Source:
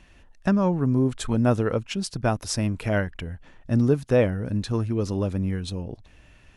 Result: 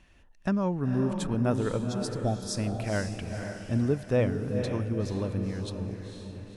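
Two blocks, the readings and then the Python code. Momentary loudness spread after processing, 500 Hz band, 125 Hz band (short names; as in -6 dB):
9 LU, -5.0 dB, -4.5 dB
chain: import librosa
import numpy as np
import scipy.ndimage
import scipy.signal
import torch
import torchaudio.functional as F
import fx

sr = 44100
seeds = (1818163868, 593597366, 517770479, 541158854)

y = fx.spec_repair(x, sr, seeds[0], start_s=1.88, length_s=0.64, low_hz=870.0, high_hz=3200.0, source='before')
y = fx.echo_diffused(y, sr, ms=489, feedback_pct=45, wet_db=-6.0)
y = F.gain(torch.from_numpy(y), -6.0).numpy()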